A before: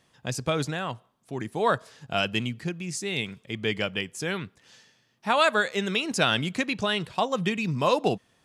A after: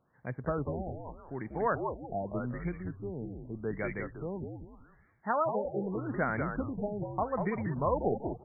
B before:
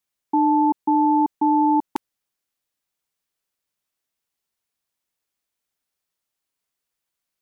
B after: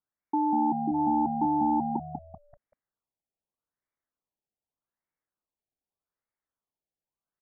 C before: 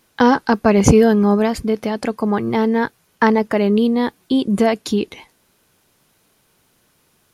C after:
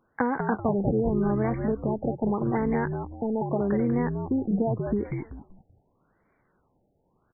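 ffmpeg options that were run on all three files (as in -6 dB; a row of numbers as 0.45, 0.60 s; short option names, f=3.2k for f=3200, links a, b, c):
-filter_complex "[0:a]acompressor=threshold=-16dB:ratio=6,asplit=5[a][b][c][d][e];[b]adelay=192,afreqshift=-73,volume=-5dB[f];[c]adelay=384,afreqshift=-146,volume=-14.9dB[g];[d]adelay=576,afreqshift=-219,volume=-24.8dB[h];[e]adelay=768,afreqshift=-292,volume=-34.7dB[i];[a][f][g][h][i]amix=inputs=5:normalize=0,afftfilt=real='re*lt(b*sr/1024,850*pow(2400/850,0.5+0.5*sin(2*PI*0.83*pts/sr)))':imag='im*lt(b*sr/1024,850*pow(2400/850,0.5+0.5*sin(2*PI*0.83*pts/sr)))':win_size=1024:overlap=0.75,volume=-6dB"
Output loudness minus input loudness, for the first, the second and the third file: -7.5, -7.5, -10.0 LU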